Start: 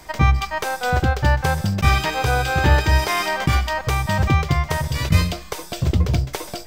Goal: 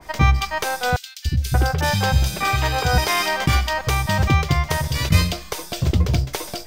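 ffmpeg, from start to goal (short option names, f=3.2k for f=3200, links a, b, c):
-filter_complex "[0:a]bandreject=f=7.7k:w=19,asettb=1/sr,asplit=3[a][b][c];[a]atrim=end=0.964[d];[b]atrim=start=0.96:end=2.98,asetpts=PTS-STARTPTS,afade=t=in:d=0.004:c=qsin,afade=t=out:st=2.016:d=0.004:c=qsin,acrossover=split=250|2800[e][f][g];[e]adelay=290[h];[f]adelay=580[i];[h][i][g]amix=inputs=3:normalize=0,atrim=end_sample=89082[j];[c]atrim=start=2.976[k];[d][j]acrossfade=d=0.004:c1=hsin:c2=qsin[l];[l][k]acrossfade=d=0.004:c1=qsin:c2=hsin,adynamicequalizer=threshold=0.02:dfrequency=2500:dqfactor=0.7:tfrequency=2500:tqfactor=0.7:attack=5:release=100:ratio=0.375:range=2:mode=boostabove:tftype=highshelf"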